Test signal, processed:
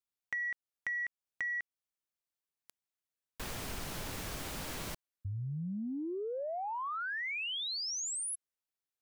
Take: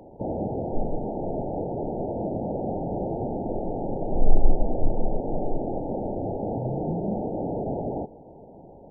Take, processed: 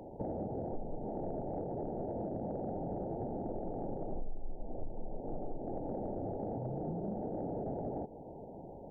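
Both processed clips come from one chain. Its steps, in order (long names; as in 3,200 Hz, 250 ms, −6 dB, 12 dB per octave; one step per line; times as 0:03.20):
downward compressor 5 to 1, threshold −34 dBFS
soft clipping −22.5 dBFS
level −1.5 dB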